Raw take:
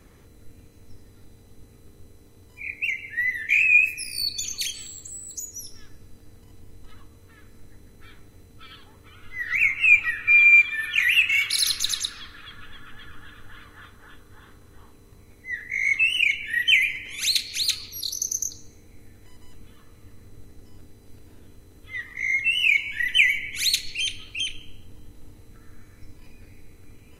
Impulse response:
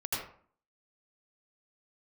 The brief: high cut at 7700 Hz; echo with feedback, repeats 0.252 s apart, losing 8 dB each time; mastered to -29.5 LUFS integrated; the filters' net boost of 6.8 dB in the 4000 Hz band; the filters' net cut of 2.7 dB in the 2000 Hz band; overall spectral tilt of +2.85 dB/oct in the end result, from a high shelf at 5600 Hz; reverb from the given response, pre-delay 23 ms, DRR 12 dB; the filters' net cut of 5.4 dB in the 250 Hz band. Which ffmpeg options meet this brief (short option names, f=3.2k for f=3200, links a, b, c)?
-filter_complex "[0:a]lowpass=7.7k,equalizer=f=250:t=o:g=-7,equalizer=f=2k:t=o:g=-8.5,equalizer=f=4k:t=o:g=8.5,highshelf=f=5.6k:g=7.5,aecho=1:1:252|504|756|1008|1260:0.398|0.159|0.0637|0.0255|0.0102,asplit=2[a][b];[1:a]atrim=start_sample=2205,adelay=23[c];[b][c]afir=irnorm=-1:irlink=0,volume=-17dB[d];[a][d]amix=inputs=2:normalize=0,volume=-11dB"